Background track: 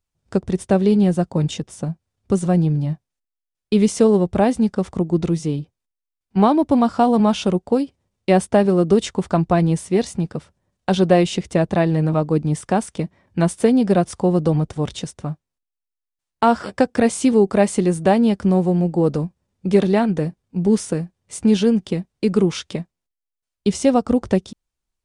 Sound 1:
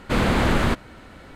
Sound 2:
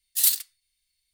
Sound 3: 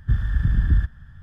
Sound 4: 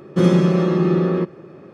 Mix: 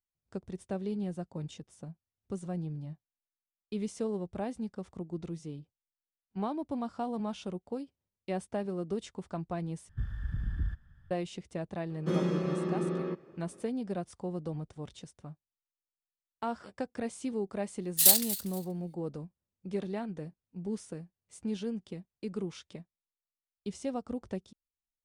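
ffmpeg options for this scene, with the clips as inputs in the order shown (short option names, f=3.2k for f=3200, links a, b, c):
-filter_complex "[0:a]volume=-19.5dB[a];[4:a]lowshelf=f=88:g=-11.5[b];[2:a]aecho=1:1:239|478:0.168|0.0369[c];[a]asplit=2[d][e];[d]atrim=end=9.894[f];[3:a]atrim=end=1.22,asetpts=PTS-STARTPTS,volume=-14.5dB[g];[e]atrim=start=11.106[h];[b]atrim=end=1.73,asetpts=PTS-STARTPTS,volume=-13.5dB,afade=t=in:d=0.004:c=hsin,afade=t=out:st=1.726:d=0.004:c=hsin,adelay=11900[i];[c]atrim=end=1.13,asetpts=PTS-STARTPTS,afade=t=in:d=0.004:c=hsin,afade=t=out:st=1.126:d=0.004:c=hsin,adelay=17820[j];[f][g]acrossfade=d=0.004:c1=hsin:c2=hsin[k];[k][h]acrossfade=d=0.004:c1=hsin:c2=hsin[l];[l][i][j]amix=inputs=3:normalize=0"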